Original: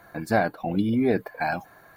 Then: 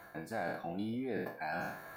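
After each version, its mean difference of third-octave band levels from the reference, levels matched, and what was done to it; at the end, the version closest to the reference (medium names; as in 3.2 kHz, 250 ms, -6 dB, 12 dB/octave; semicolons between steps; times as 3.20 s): 8.5 dB: spectral sustain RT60 0.52 s; bass shelf 140 Hz -6 dB; reverse; compression 5:1, threshold -38 dBFS, peak gain reduction 19 dB; reverse; trim +1 dB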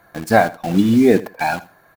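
6.0 dB: spectral noise reduction 6 dB; in parallel at -3 dB: bit crusher 6-bit; on the sum: feedback delay 81 ms, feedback 20%, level -18.5 dB; trim +5.5 dB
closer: second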